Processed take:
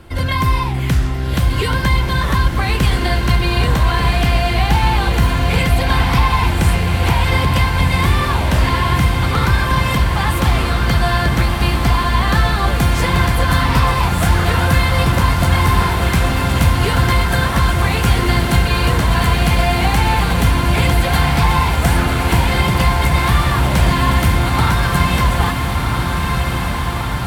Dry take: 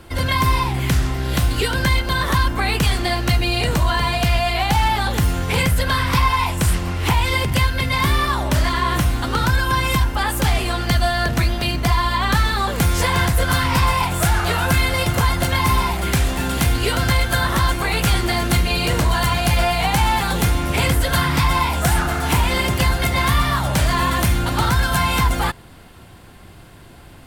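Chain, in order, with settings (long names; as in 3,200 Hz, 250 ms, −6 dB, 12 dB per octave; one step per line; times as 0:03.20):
bass and treble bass +3 dB, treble −4 dB
feedback delay with all-pass diffusion 1,390 ms, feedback 71%, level −4 dB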